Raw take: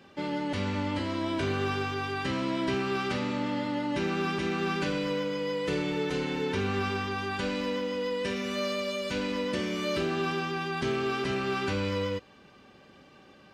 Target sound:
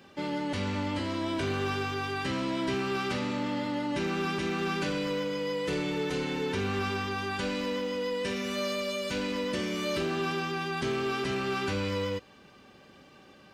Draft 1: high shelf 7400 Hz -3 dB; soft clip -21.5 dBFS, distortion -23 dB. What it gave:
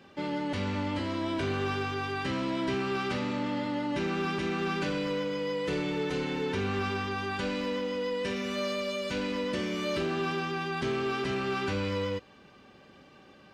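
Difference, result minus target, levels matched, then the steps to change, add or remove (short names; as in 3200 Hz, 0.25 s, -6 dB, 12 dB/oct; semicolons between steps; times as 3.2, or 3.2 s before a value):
8000 Hz band -4.0 dB
change: high shelf 7400 Hz +7 dB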